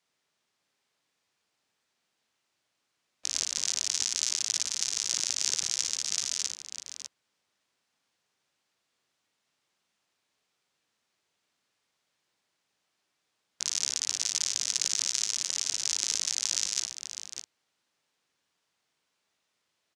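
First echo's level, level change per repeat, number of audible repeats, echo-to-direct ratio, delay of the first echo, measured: −6.0 dB, repeats not evenly spaced, 2, −4.0 dB, 57 ms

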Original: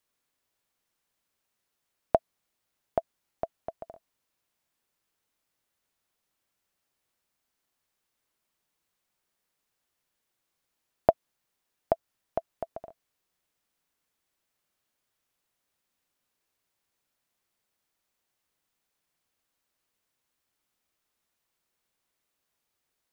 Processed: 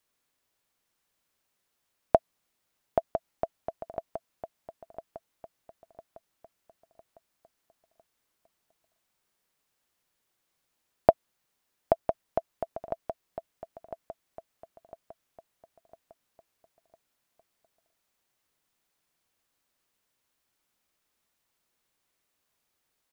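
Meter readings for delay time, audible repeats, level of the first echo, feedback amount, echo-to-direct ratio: 1,004 ms, 4, −10.0 dB, 44%, −9.0 dB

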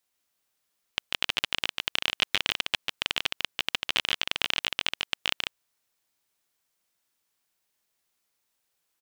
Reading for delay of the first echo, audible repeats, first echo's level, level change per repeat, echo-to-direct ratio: 145 ms, 1, −4.0 dB, repeats not evenly spaced, −4.0 dB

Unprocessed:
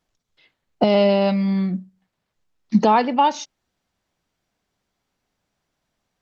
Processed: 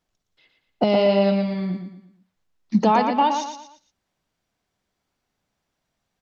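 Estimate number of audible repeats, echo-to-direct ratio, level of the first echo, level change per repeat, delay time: 4, −6.0 dB, −6.5 dB, −8.5 dB, 116 ms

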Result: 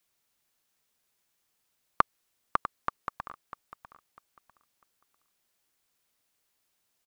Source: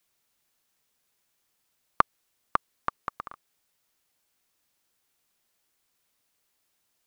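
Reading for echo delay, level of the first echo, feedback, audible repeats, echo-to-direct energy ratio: 648 ms, −13.0 dB, 25%, 2, −12.5 dB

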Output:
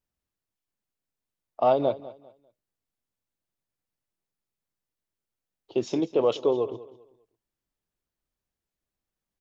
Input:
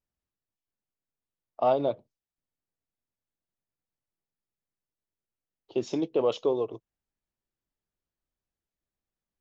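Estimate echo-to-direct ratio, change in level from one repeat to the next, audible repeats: −17.0 dB, −11.0 dB, 2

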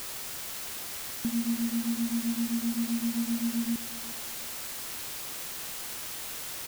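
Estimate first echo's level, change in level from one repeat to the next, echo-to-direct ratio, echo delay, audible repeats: −17.0 dB, −11.5 dB, −16.5 dB, 361 ms, 2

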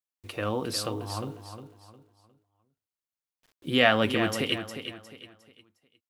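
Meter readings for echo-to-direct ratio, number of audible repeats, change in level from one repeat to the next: −9.0 dB, 3, −9.5 dB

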